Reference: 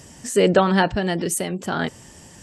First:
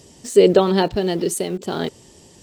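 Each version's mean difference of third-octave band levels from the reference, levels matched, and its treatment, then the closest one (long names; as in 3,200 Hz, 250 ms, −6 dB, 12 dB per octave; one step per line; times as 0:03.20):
4.5 dB: graphic EQ with 15 bands 400 Hz +9 dB, 1,600 Hz −7 dB, 4,000 Hz +7 dB
in parallel at −9 dB: centre clipping without the shift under −27 dBFS
on the sum: level −4.5 dB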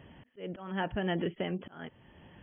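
9.5 dB: volume swells 586 ms
linear-phase brick-wall low-pass 3,400 Hz
level −7.5 dB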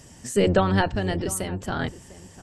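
3.0 dB: sub-octave generator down 1 octave, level −1 dB
slap from a distant wall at 120 metres, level −17 dB
level −4.5 dB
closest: third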